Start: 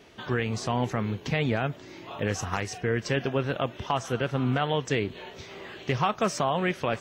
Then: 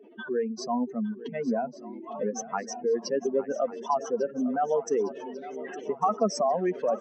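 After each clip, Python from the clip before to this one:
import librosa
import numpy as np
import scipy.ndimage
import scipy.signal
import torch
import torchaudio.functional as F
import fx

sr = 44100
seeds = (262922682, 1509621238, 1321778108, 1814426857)

y = fx.spec_expand(x, sr, power=3.1)
y = scipy.signal.sosfilt(scipy.signal.ellip(4, 1.0, 50, 210.0, 'highpass', fs=sr, output='sos'), y)
y = fx.echo_swing(y, sr, ms=1146, ratio=3, feedback_pct=53, wet_db=-15.5)
y = y * librosa.db_to_amplitude(2.5)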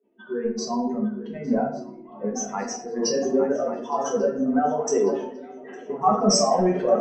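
y = fx.transient(x, sr, attack_db=0, sustain_db=7)
y = fx.room_shoebox(y, sr, seeds[0], volume_m3=150.0, walls='mixed', distance_m=1.1)
y = fx.band_widen(y, sr, depth_pct=70)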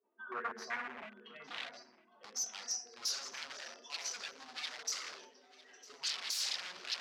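y = 10.0 ** (-25.0 / 20.0) * (np.abs((x / 10.0 ** (-25.0 / 20.0) + 3.0) % 4.0 - 2.0) - 1.0)
y = fx.filter_sweep_bandpass(y, sr, from_hz=1100.0, to_hz=4800.0, start_s=0.04, end_s=1.95, q=2.7)
y = fx.echo_feedback(y, sr, ms=953, feedback_pct=34, wet_db=-20.0)
y = y * librosa.db_to_amplitude(2.0)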